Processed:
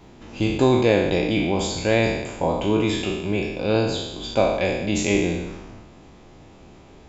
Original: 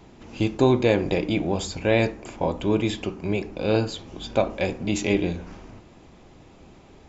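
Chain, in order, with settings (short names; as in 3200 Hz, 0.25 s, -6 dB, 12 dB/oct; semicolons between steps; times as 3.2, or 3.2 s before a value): spectral trails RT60 1.03 s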